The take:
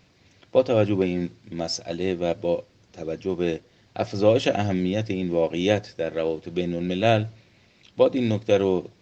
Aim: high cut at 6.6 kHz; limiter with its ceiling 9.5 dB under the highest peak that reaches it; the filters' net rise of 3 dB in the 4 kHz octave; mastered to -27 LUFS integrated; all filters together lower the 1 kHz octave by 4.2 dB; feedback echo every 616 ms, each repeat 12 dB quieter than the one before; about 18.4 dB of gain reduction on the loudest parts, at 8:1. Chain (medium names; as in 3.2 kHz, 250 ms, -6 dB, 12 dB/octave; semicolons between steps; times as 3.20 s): low-pass 6.6 kHz; peaking EQ 1 kHz -7.5 dB; peaking EQ 4 kHz +5 dB; compression 8:1, threshold -34 dBFS; peak limiter -28.5 dBFS; feedback delay 616 ms, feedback 25%, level -12 dB; trim +13.5 dB